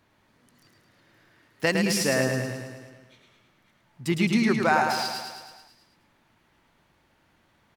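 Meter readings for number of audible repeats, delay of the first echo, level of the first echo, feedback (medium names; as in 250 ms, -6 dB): 7, 108 ms, -5.0 dB, 60%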